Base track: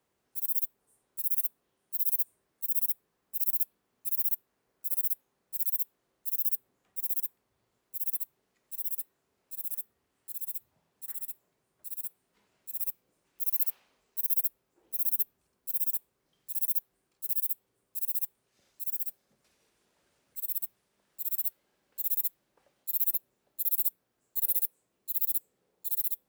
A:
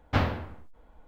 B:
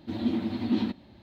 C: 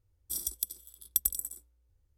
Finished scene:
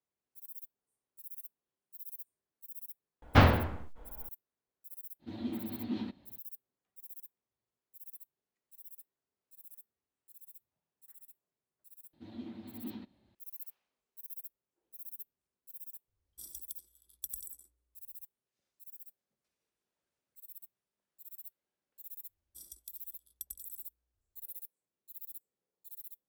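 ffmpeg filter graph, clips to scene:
-filter_complex "[2:a]asplit=2[a][b];[3:a]asplit=2[c][d];[0:a]volume=-18dB[e];[1:a]acontrast=78[f];[d]equalizer=f=720:t=o:w=0.99:g=-5.5[g];[f]atrim=end=1.07,asetpts=PTS-STARTPTS,volume=-2.5dB,afade=t=in:d=0.004:c=hsin,afade=t=out:st=1.066:d=0.004:c=hsin,adelay=3220[h];[a]atrim=end=1.22,asetpts=PTS-STARTPTS,volume=-10dB,afade=t=in:d=0.05,afade=t=out:st=1.17:d=0.05,adelay=5190[i];[b]atrim=end=1.22,asetpts=PTS-STARTPTS,volume=-17dB,afade=t=in:d=0.004:c=hsin,afade=t=out:st=1.216:d=0.004:c=hsin,adelay=12130[j];[c]atrim=end=2.17,asetpts=PTS-STARTPTS,volume=-13.5dB,afade=t=in:d=0.004:c=hsin,afade=t=out:st=2.166:d=0.004:c=hsin,adelay=16080[k];[g]atrim=end=2.17,asetpts=PTS-STARTPTS,volume=-16.5dB,afade=t=in:d=0.004:c=hsin,afade=t=out:st=2.166:d=0.004:c=hsin,adelay=22250[l];[e][h][i][j][k][l]amix=inputs=6:normalize=0"

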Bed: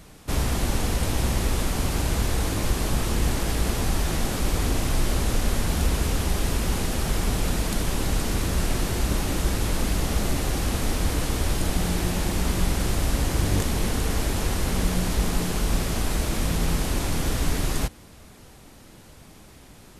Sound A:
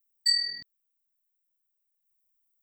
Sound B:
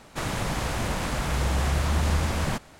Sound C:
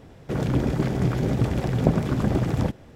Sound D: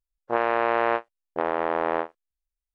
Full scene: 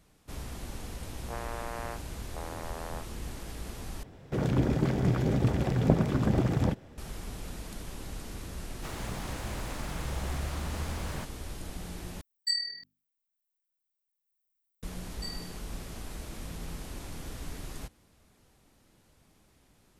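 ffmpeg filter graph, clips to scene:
-filter_complex "[1:a]asplit=2[a][b];[0:a]volume=-16dB[c];[4:a]highpass=410[d];[2:a]aeval=exprs='val(0)*gte(abs(val(0)),0.0112)':c=same[e];[a]bandreject=f=50:t=h:w=6,bandreject=f=100:t=h:w=6,bandreject=f=150:t=h:w=6,bandreject=f=200:t=h:w=6,bandreject=f=250:t=h:w=6,bandreject=f=300:t=h:w=6,bandreject=f=350:t=h:w=6[f];[c]asplit=3[g][h][i];[g]atrim=end=4.034[j];[3:a]atrim=end=2.95,asetpts=PTS-STARTPTS,volume=-3.5dB[k];[h]atrim=start=6.976:end=12.214[l];[f]atrim=end=2.62,asetpts=PTS-STARTPTS,volume=-5.5dB[m];[i]atrim=start=14.826[n];[d]atrim=end=2.74,asetpts=PTS-STARTPTS,volume=-16dB,afade=t=in:d=0.004:c=hsin,afade=t=out:st=2.736:d=0.004:c=hsin,adelay=980[o];[e]atrim=end=2.79,asetpts=PTS-STARTPTS,volume=-11dB,afade=t=in:d=0.004:c=hsin,afade=t=out:st=2.786:d=0.004:c=hsin,adelay=8670[p];[b]atrim=end=2.62,asetpts=PTS-STARTPTS,volume=-17.5dB,afade=t=in:d=0.004:c=hsin,afade=t=out:st=2.616:d=0.004:c=hsin,adelay=14960[q];[j][k]acrossfade=d=0.004:c1=hsin:c2=hsin[r];[r][l]acrossfade=d=0.004:c1=hsin:c2=hsin[s];[s][m]acrossfade=d=0.004:c1=hsin:c2=hsin[t];[t][n]acrossfade=d=0.004:c1=hsin:c2=hsin[u];[u][o][p][q]amix=inputs=4:normalize=0"

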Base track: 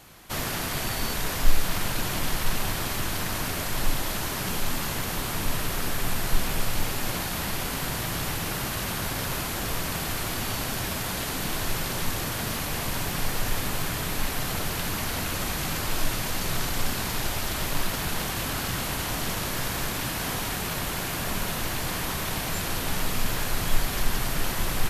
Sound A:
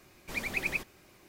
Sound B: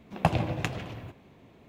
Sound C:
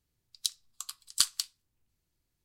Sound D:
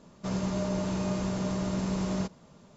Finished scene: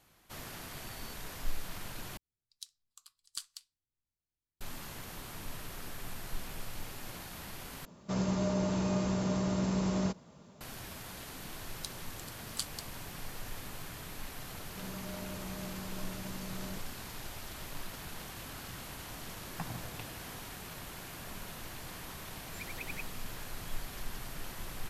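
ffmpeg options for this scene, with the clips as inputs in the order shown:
-filter_complex "[3:a]asplit=2[a][b];[4:a]asplit=2[c][d];[0:a]volume=-15.5dB[e];[c]highpass=42[f];[2:a]asplit=2[g][h];[h]afreqshift=-1.2[i];[g][i]amix=inputs=2:normalize=1[j];[e]asplit=3[k][l][m];[k]atrim=end=2.174[n];[a]atrim=end=2.44,asetpts=PTS-STARTPTS,volume=-16dB[o];[l]atrim=start=4.606:end=7.854[p];[f]atrim=end=2.76,asetpts=PTS-STARTPTS,volume=-1dB[q];[m]atrim=start=10.606[r];[b]atrim=end=2.44,asetpts=PTS-STARTPTS,volume=-12dB,afade=t=in:d=0.004:c=hsin,afade=t=out:st=2.436:d=0.004:c=hsin,adelay=11390[s];[d]atrim=end=2.76,asetpts=PTS-STARTPTS,volume=-13.5dB,afade=t=in:d=0.004:c=hsin,afade=t=out:st=2.756:d=0.004:c=hsin,adelay=14520[t];[j]atrim=end=1.68,asetpts=PTS-STARTPTS,volume=-13.5dB,afade=t=in:d=0.004:c=hsin,afade=t=out:st=1.676:d=0.004:c=hsin,adelay=19350[u];[1:a]atrim=end=1.28,asetpts=PTS-STARTPTS,volume=-12dB,afade=t=in:d=0.004:c=hsin,afade=t=out:st=1.276:d=0.004:c=hsin,adelay=22240[v];[n][o]acrossfade=d=0.004:c1=hsin:c2=hsin[w];[w][p]acrossfade=d=0.004:c1=hsin:c2=hsin[x];[x][q]acrossfade=d=0.004:c1=hsin:c2=hsin[y];[y][r]acrossfade=d=0.004:c1=hsin:c2=hsin[z];[z][s][t][u][v]amix=inputs=5:normalize=0"

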